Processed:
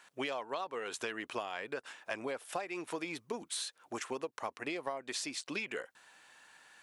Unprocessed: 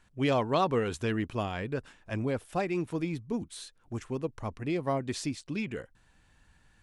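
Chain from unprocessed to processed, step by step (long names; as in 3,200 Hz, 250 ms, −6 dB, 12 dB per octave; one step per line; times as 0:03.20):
high-pass filter 600 Hz 12 dB per octave
downward compressor 20 to 1, threshold −43 dBFS, peak gain reduction 21 dB
level +9 dB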